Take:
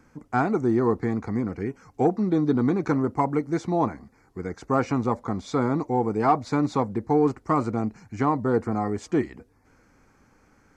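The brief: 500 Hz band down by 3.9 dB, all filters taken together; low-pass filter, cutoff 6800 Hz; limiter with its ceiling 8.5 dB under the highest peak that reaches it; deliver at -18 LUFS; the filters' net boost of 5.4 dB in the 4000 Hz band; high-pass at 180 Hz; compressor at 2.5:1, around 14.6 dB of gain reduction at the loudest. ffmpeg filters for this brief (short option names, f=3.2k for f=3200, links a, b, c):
-af "highpass=180,lowpass=6.8k,equalizer=f=500:t=o:g=-5,equalizer=f=4k:t=o:g=7,acompressor=threshold=-41dB:ratio=2.5,volume=24dB,alimiter=limit=-6.5dB:level=0:latency=1"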